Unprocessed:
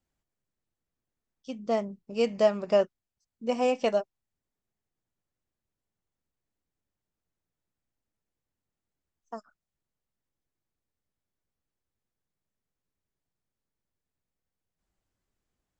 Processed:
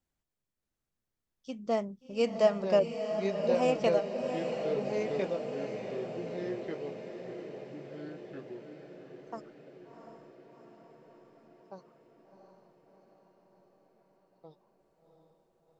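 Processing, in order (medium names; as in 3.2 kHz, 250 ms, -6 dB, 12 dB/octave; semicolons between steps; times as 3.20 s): 2.79–3.55 s: spectral contrast enhancement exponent 1.6; ever faster or slower copies 625 ms, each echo -3 st, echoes 3, each echo -6 dB; echo that smears into a reverb 716 ms, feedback 66%, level -7.5 dB; trim -2.5 dB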